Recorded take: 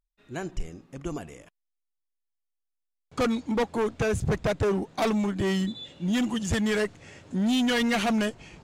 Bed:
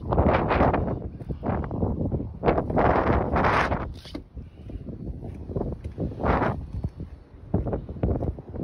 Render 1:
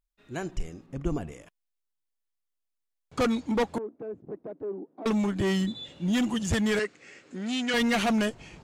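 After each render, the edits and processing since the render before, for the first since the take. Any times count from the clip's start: 0.86–1.32 s: tilt EQ -2 dB/octave; 3.78–5.06 s: ladder band-pass 360 Hz, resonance 50%; 6.79–7.74 s: cabinet simulation 340–8200 Hz, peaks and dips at 640 Hz -9 dB, 920 Hz -10 dB, 2.2 kHz +3 dB, 3.4 kHz -5 dB, 6 kHz -3 dB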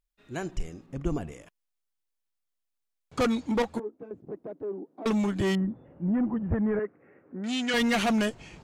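3.62–4.11 s: three-phase chorus; 5.55–7.44 s: Gaussian low-pass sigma 6.4 samples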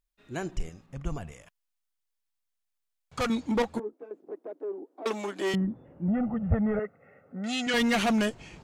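0.69–3.30 s: peaking EQ 320 Hz -12 dB 1.1 oct; 3.93–5.54 s: high-pass 310 Hz 24 dB/octave; 6.08–7.67 s: comb 1.5 ms, depth 82%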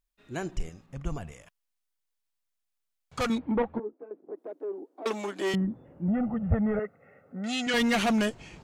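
3.38–4.38 s: Gaussian low-pass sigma 3.9 samples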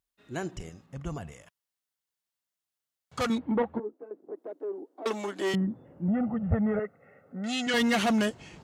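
high-pass 68 Hz; band-stop 2.4 kHz, Q 15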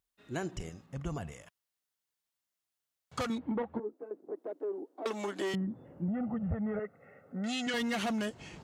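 compression 6:1, threshold -31 dBFS, peak gain reduction 11 dB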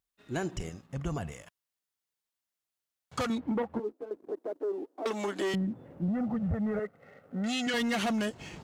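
waveshaping leveller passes 1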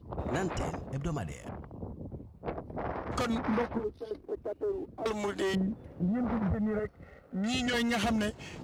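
add bed -15.5 dB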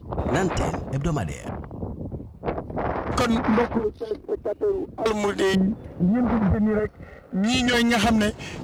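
trim +9.5 dB

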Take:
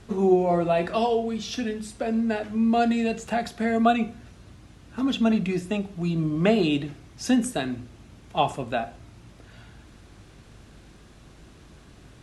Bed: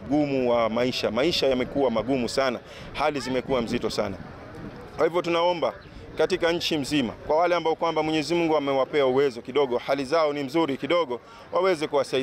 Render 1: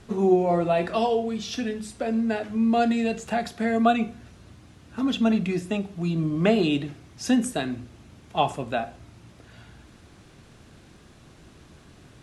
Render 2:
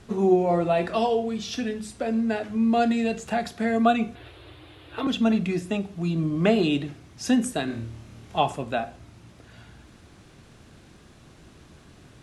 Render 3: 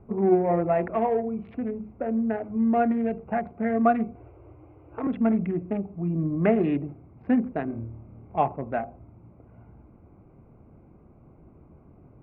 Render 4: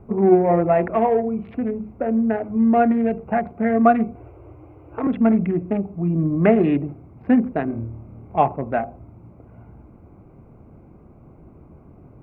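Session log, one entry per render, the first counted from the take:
de-hum 50 Hz, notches 2
4.15–5.07 s: FFT filter 130 Hz 0 dB, 210 Hz -27 dB, 310 Hz +8 dB, 1.5 kHz +5 dB, 3.6 kHz +12 dB, 6 kHz -12 dB, 12 kHz +2 dB; 7.65–8.38 s: flutter echo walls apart 4.5 m, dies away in 0.45 s
local Wiener filter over 25 samples; elliptic low-pass 2.2 kHz, stop band 80 dB
trim +6 dB

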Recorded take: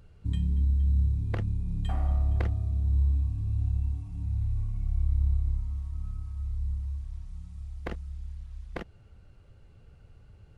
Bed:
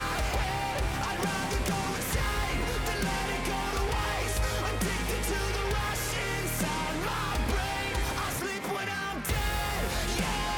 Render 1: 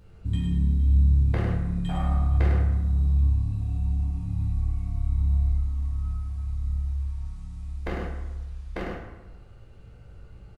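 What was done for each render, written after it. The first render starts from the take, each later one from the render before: delay 102 ms -7 dB; plate-style reverb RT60 1.1 s, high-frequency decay 0.6×, pre-delay 0 ms, DRR -5 dB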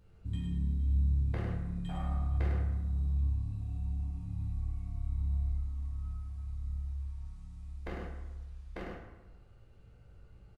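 trim -9.5 dB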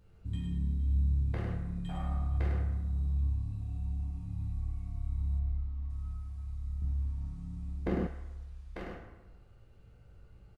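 5.39–5.90 s: distance through air 170 m; 6.82–8.07 s: peaking EQ 220 Hz +14.5 dB 2.7 oct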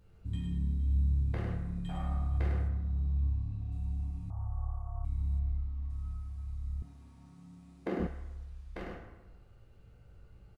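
2.68–3.72 s: distance through air 100 m; 4.30–5.05 s: FFT filter 100 Hz 0 dB, 240 Hz -25 dB, 590 Hz +14 dB, 1.2 kHz +13 dB, 2.4 kHz -24 dB, 3.9 kHz -27 dB, 5.8 kHz -10 dB; 6.82–8.00 s: high-pass 250 Hz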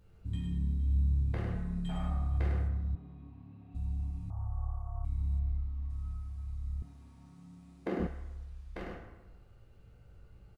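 1.55–2.11 s: comb 4.7 ms; 2.95–3.75 s: Chebyshev band-pass 240–2500 Hz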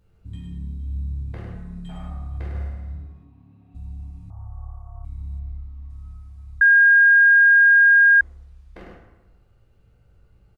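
0.66–1.24 s: band-stop 1.9 kHz; 2.49–3.25 s: flutter echo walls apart 9.5 m, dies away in 1 s; 6.61–8.21 s: bleep 1.62 kHz -9.5 dBFS

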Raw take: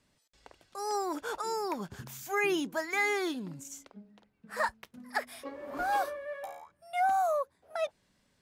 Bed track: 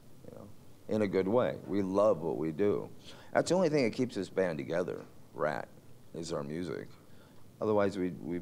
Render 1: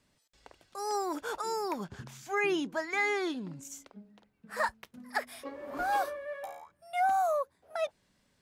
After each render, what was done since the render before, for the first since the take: 1.84–3.63 s: distance through air 56 m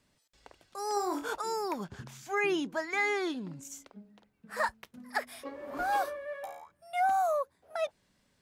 0.94–1.34 s: flutter echo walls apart 4.2 m, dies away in 0.26 s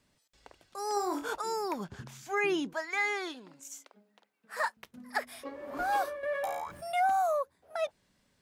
2.73–4.77 s: Bessel high-pass 570 Hz; 6.23–7.07 s: level flattener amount 50%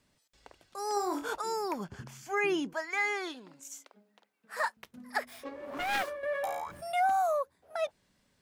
1.71–3.24 s: band-stop 3.8 kHz, Q 6.6; 5.28–6.10 s: self-modulated delay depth 0.41 ms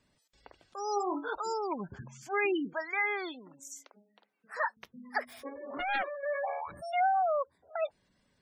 spectral gate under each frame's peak -20 dB strong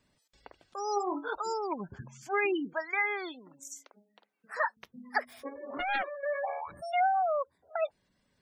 transient shaper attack +3 dB, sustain -2 dB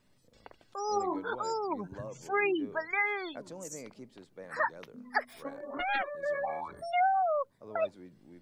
add bed track -17 dB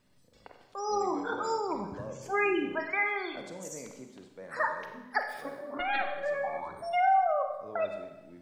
Schroeder reverb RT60 1 s, combs from 31 ms, DRR 4.5 dB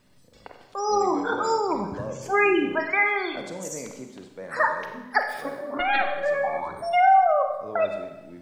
trim +7.5 dB

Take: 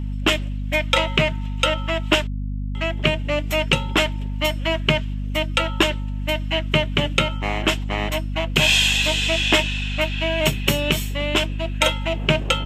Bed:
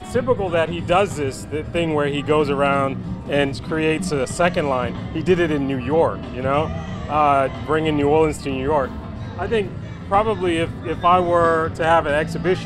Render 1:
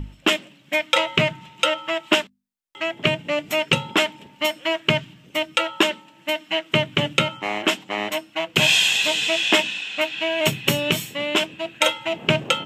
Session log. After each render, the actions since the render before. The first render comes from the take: hum notches 50/100/150/200/250 Hz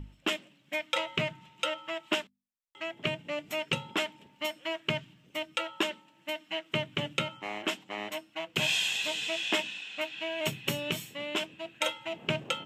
trim -11.5 dB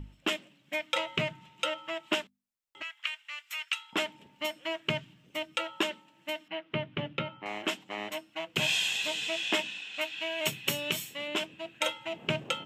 2.82–3.93 s: inverse Chebyshev high-pass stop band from 470 Hz, stop band 50 dB; 6.48–7.46 s: distance through air 310 m; 9.94–11.28 s: tilt EQ +1.5 dB/octave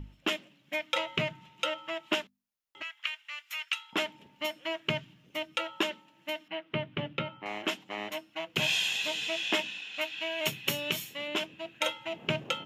band-stop 8 kHz, Q 5.5

